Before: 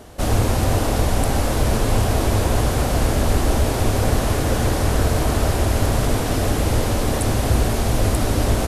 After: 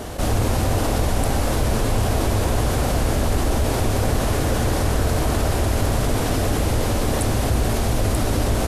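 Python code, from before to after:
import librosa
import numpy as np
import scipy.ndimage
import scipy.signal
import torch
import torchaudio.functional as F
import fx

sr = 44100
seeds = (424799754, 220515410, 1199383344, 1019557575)

y = fx.env_flatten(x, sr, amount_pct=50)
y = y * librosa.db_to_amplitude(-3.5)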